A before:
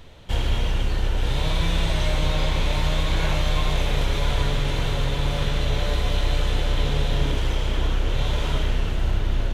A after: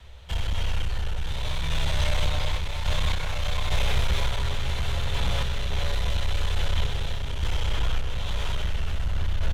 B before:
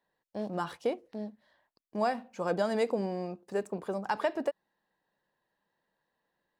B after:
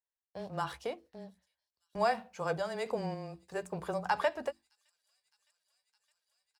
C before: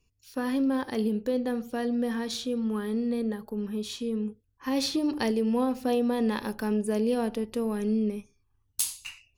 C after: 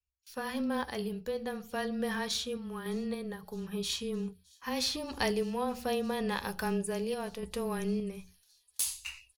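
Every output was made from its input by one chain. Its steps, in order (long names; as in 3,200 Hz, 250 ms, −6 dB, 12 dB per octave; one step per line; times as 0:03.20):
mains-hum notches 50/100/150/200/250/300/350 Hz
noise gate with hold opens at −44 dBFS
parametric band 300 Hz −11 dB 1.4 octaves
frequency shifter −16 Hz
in parallel at +1.5 dB: brickwall limiter −21.5 dBFS
on the sum: parametric band 67 Hz +14 dB 0.46 octaves
gain into a clipping stage and back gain 14 dB
sample-and-hold tremolo
double-tracking delay 12 ms −13.5 dB
on a send: delay with a high-pass on its return 613 ms, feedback 84%, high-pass 5,500 Hz, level −22 dB
on the sum: level −3 dB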